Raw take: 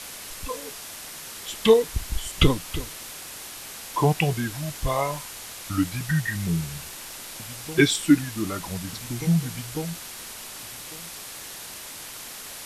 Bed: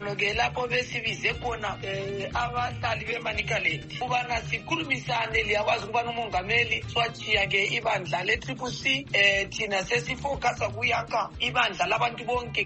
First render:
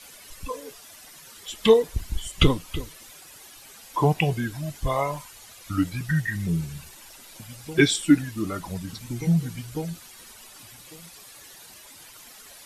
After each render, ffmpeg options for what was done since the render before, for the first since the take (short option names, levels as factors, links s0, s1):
-af "afftdn=nr=12:nf=-39"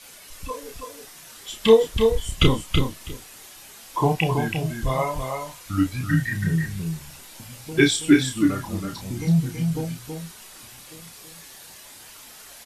-filter_complex "[0:a]asplit=2[s0][s1];[s1]adelay=31,volume=0.562[s2];[s0][s2]amix=inputs=2:normalize=0,aecho=1:1:327:0.531"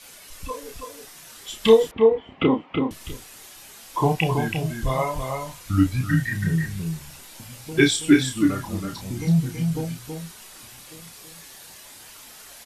-filter_complex "[0:a]asettb=1/sr,asplit=3[s0][s1][s2];[s0]atrim=end=1.914[s3];[s1]atrim=start=1.91:end=2.91,asetpts=PTS-STARTPTS,afade=t=in:d=0.004:c=qsin,afade=t=out:st=0.996:d=0.004:c=qsin,highpass=240,equalizer=f=260:t=q:w=4:g=9,equalizer=f=460:t=q:w=4:g=3,equalizer=f=790:t=q:w=4:g=7,equalizer=f=1600:t=q:w=4:g=-6,lowpass=f=2300:w=0.5412,lowpass=f=2300:w=1.3066[s4];[s2]atrim=start=2.906[s5];[s3][s4]acrossfade=d=0.004:c1=hsin:c2=qsin[s6];[s6][s5]acrossfade=d=0.004:c1=qsin:c2=hsin,asettb=1/sr,asplit=3[s7][s8][s9];[s7]atrim=end=5.294[s10];[s8]atrim=start=5.29:end=6.02,asetpts=PTS-STARTPTS,afade=t=in:d=0.004:c=qsin,afade=t=out:st=0.726:d=0.004:c=qsin,bass=f=250:g=6,treble=f=4000:g=0[s11];[s9]atrim=start=6.016[s12];[s10][s11]acrossfade=d=0.004:c1=hsin:c2=qsin[s13];[s13][s12]acrossfade=d=0.004:c1=qsin:c2=hsin"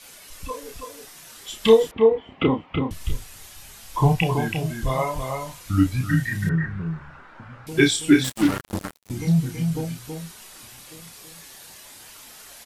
-filter_complex "[0:a]asplit=3[s0][s1][s2];[s0]afade=t=out:st=2.46:d=0.02[s3];[s1]asubboost=boost=6.5:cutoff=120,afade=t=in:st=2.46:d=0.02,afade=t=out:st=4.22:d=0.02[s4];[s2]afade=t=in:st=4.22:d=0.02[s5];[s3][s4][s5]amix=inputs=3:normalize=0,asettb=1/sr,asplit=3[s6][s7][s8];[s6]atrim=end=6.494[s9];[s7]atrim=start=6.49:end=7.67,asetpts=PTS-STARTPTS,afade=t=in:d=0.004:c=qsin,afade=t=out:st=1.176:d=0.004:c=qsin,lowpass=f=1400:t=q:w=3.4[s10];[s8]atrim=start=7.666[s11];[s9][s10]acrossfade=d=0.004:c1=hsin:c2=qsin[s12];[s12][s11]acrossfade=d=0.004:c1=qsin:c2=hsin,asettb=1/sr,asplit=3[s13][s14][s15];[s13]atrim=end=8.244[s16];[s14]atrim=start=8.24:end=9.1,asetpts=PTS-STARTPTS,afade=t=in:d=0.004:c=qsin,afade=t=out:st=0.856:d=0.004:c=qsin,acrusher=bits=3:mix=0:aa=0.5[s17];[s15]atrim=start=9.096[s18];[s16][s17]acrossfade=d=0.004:c1=hsin:c2=qsin[s19];[s19][s18]acrossfade=d=0.004:c1=qsin:c2=hsin"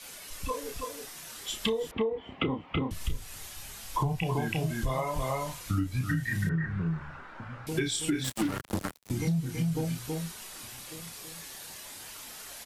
-filter_complex "[0:a]acrossover=split=130[s0][s1];[s1]alimiter=limit=0.224:level=0:latency=1:release=208[s2];[s0][s2]amix=inputs=2:normalize=0,acompressor=threshold=0.0501:ratio=6"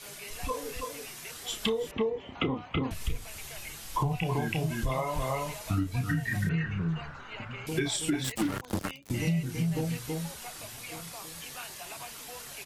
-filter_complex "[1:a]volume=0.0944[s0];[0:a][s0]amix=inputs=2:normalize=0"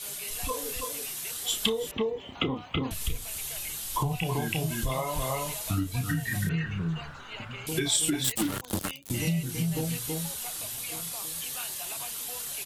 -af "aexciter=amount=2:drive=5.4:freq=3000"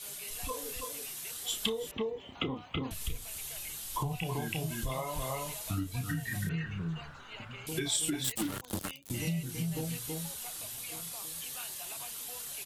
-af "volume=0.531"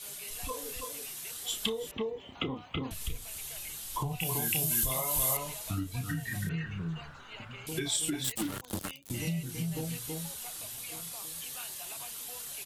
-filter_complex "[0:a]asettb=1/sr,asplit=3[s0][s1][s2];[s0]atrim=end=4.204[s3];[s1]atrim=start=4.2:end=5.37,asetpts=PTS-STARTPTS,afade=t=in:d=0.004:c=qsin,afade=t=out:st=1.166:d=0.004:c=qsin,aemphasis=mode=production:type=75fm[s4];[s2]atrim=start=5.366[s5];[s3][s4]acrossfade=d=0.004:c1=hsin:c2=qsin[s6];[s6][s5]acrossfade=d=0.004:c1=qsin:c2=hsin"